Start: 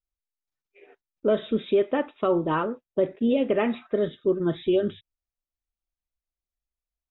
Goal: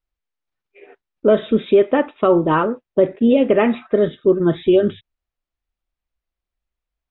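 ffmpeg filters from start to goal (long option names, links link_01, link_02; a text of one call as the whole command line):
ffmpeg -i in.wav -af "lowpass=3300,volume=8.5dB" out.wav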